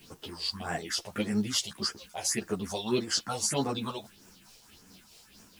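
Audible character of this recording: phasing stages 4, 1.7 Hz, lowest notch 220–3700 Hz; a quantiser's noise floor 10-bit, dither triangular; tremolo triangle 4.5 Hz, depth 40%; a shimmering, thickened sound

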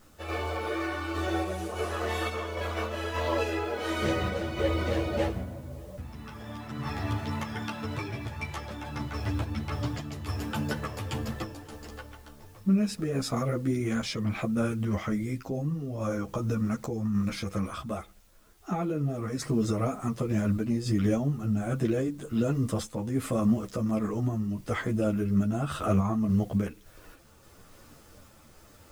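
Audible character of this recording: a quantiser's noise floor 10-bit, dither triangular; random-step tremolo; a shimmering, thickened sound

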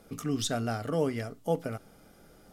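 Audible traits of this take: noise floor -58 dBFS; spectral tilt -5.0 dB/octave

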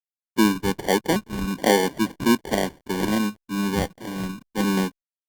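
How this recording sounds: a quantiser's noise floor 10-bit, dither none; phasing stages 4, 1.3 Hz, lowest notch 510–1400 Hz; aliases and images of a low sample rate 1.3 kHz, jitter 0%; Opus

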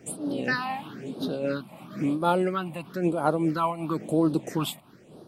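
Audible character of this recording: phasing stages 6, 1 Hz, lowest notch 400–2200 Hz; random flutter of the level

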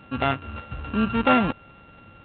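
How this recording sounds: a buzz of ramps at a fixed pitch in blocks of 32 samples; A-law

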